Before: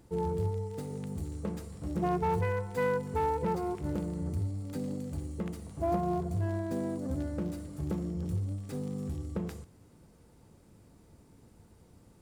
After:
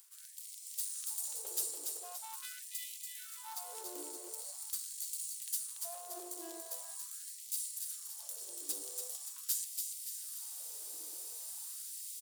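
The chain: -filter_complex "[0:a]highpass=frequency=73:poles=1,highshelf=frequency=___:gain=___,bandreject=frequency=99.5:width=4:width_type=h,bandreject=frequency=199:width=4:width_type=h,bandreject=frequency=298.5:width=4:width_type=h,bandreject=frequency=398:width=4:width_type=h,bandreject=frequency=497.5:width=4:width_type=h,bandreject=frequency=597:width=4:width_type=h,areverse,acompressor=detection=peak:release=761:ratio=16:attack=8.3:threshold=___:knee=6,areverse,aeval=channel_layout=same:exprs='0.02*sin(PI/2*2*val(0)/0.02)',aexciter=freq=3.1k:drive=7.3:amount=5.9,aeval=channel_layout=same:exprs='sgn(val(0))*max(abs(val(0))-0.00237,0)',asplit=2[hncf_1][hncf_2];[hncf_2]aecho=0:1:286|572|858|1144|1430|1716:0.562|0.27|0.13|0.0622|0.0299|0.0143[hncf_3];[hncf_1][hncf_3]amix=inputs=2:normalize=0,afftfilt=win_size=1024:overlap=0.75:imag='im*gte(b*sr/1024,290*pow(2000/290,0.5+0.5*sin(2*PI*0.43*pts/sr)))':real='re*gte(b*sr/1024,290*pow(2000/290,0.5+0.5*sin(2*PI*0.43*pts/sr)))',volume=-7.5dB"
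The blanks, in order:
8.6k, 11, -42dB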